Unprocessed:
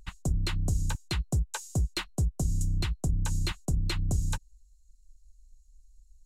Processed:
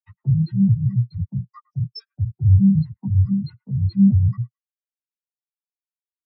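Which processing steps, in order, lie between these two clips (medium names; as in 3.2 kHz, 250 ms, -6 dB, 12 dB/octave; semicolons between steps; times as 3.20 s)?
pitch shift switched off and on +4 st, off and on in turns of 171 ms; Chebyshev band-pass 100–5400 Hz, order 4; compression 6:1, threshold -37 dBFS, peak gain reduction 11 dB; chorus voices 2, 0.42 Hz, delay 11 ms, depth 4.7 ms; hum notches 60/120/180/240 Hz; waveshaping leveller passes 5; tilt shelf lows -4 dB, about 730 Hz; on a send: feedback echo behind a band-pass 107 ms, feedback 43%, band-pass 1.5 kHz, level -8 dB; on the sum: dynamic bell 3 kHz, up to -6 dB, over -48 dBFS, Q 1.3; loudness maximiser +28 dB; spectral contrast expander 4:1; trim -5 dB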